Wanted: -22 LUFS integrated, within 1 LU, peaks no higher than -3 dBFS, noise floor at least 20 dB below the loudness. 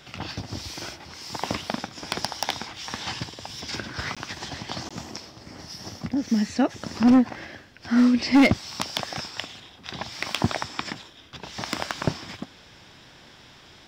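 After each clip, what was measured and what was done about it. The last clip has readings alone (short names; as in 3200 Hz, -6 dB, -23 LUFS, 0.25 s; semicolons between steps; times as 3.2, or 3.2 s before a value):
clipped 0.6%; flat tops at -12.0 dBFS; dropouts 2; longest dropout 16 ms; loudness -26.5 LUFS; peak -12.0 dBFS; loudness target -22.0 LUFS
-> clip repair -12 dBFS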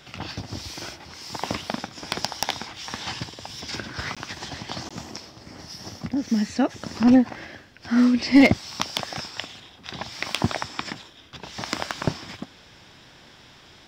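clipped 0.0%; dropouts 2; longest dropout 16 ms
-> interpolate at 4.15/4.89, 16 ms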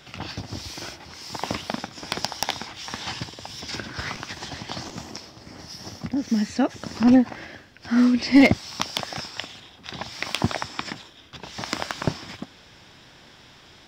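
dropouts 0; loudness -25.5 LUFS; peak -3.0 dBFS; loudness target -22.0 LUFS
-> gain +3.5 dB; limiter -3 dBFS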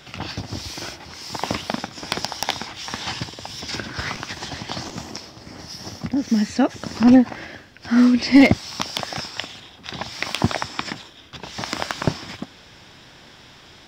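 loudness -22.5 LUFS; peak -3.0 dBFS; noise floor -47 dBFS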